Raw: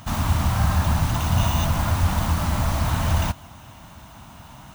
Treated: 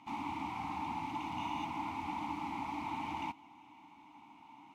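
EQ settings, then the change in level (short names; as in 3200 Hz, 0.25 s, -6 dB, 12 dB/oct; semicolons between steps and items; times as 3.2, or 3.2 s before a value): vowel filter u; low shelf 180 Hz -8.5 dB; low shelf 390 Hz -5.5 dB; +3.5 dB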